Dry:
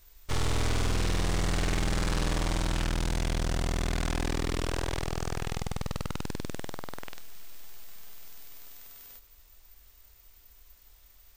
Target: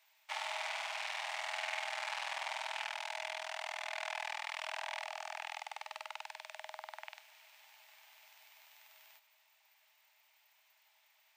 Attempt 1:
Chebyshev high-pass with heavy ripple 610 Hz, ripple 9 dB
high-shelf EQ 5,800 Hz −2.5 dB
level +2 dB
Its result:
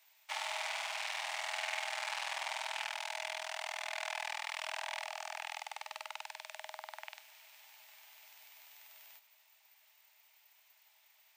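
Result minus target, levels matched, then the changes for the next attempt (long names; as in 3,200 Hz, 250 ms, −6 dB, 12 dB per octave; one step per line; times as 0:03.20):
8,000 Hz band +3.5 dB
change: high-shelf EQ 5,800 Hz −10 dB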